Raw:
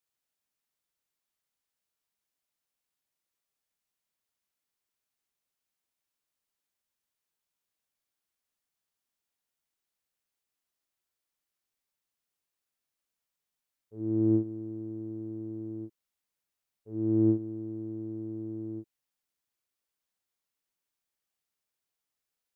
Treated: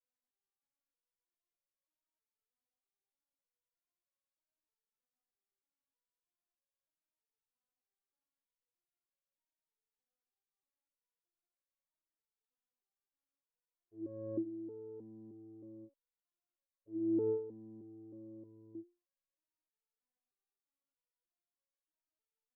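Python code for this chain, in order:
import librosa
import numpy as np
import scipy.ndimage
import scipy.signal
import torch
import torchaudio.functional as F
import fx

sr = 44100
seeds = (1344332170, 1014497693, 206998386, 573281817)

y = scipy.signal.sosfilt(scipy.signal.butter(2, 1000.0, 'lowpass', fs=sr, output='sos'), x)
y = fx.resonator_held(y, sr, hz=3.2, low_hz=250.0, high_hz=550.0)
y = y * librosa.db_to_amplitude(9.0)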